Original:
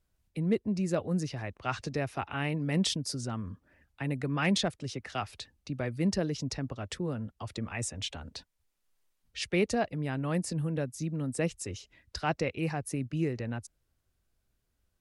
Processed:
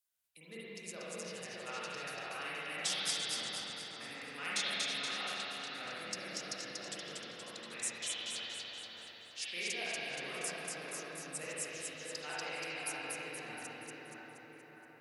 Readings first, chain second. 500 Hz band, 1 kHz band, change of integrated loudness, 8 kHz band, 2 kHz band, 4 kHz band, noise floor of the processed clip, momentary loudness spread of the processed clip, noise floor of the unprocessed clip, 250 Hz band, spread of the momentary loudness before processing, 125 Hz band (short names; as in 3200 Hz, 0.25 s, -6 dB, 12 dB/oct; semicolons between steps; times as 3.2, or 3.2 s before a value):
-11.5 dB, -7.0 dB, -6.5 dB, +1.0 dB, -1.0 dB, +1.0 dB, -56 dBFS, 13 LU, -78 dBFS, -19.5 dB, 12 LU, -24.5 dB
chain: differentiator; split-band echo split 1900 Hz, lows 0.619 s, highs 0.237 s, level -3 dB; spring tank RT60 3.2 s, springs 40/44/58 ms, chirp 40 ms, DRR -9 dB; gain -1.5 dB